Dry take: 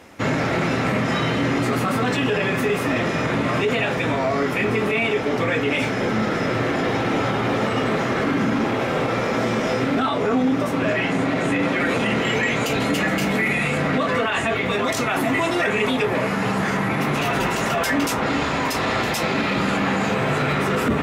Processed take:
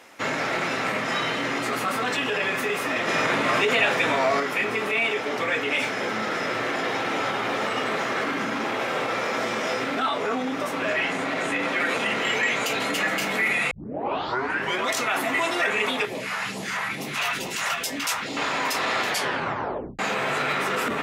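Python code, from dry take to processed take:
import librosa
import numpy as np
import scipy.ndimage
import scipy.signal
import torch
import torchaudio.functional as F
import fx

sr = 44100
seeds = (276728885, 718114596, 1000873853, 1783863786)

y = fx.phaser_stages(x, sr, stages=2, low_hz=260.0, high_hz=1500.0, hz=2.3, feedback_pct=25, at=(16.05, 18.37))
y = fx.edit(y, sr, fx.clip_gain(start_s=3.08, length_s=1.32, db=4.0),
    fx.tape_start(start_s=13.71, length_s=1.17),
    fx.tape_stop(start_s=19.06, length_s=0.93), tone=tone)
y = fx.highpass(y, sr, hz=800.0, slope=6)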